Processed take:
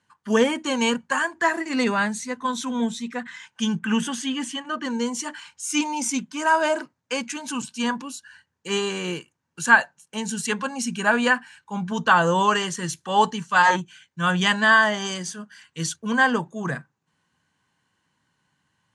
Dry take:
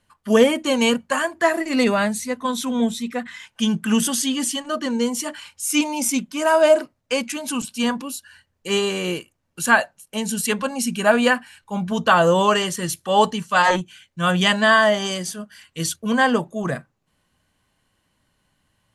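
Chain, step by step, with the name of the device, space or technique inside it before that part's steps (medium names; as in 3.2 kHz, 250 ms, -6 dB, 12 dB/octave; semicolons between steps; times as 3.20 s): 3.79–4.85 s: resonant high shelf 3.6 kHz -6.5 dB, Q 1.5; car door speaker (cabinet simulation 110–9000 Hz, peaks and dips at 150 Hz +5 dB, 610 Hz -7 dB, 930 Hz +6 dB, 1.6 kHz +6 dB, 6.4 kHz +4 dB); trim -4 dB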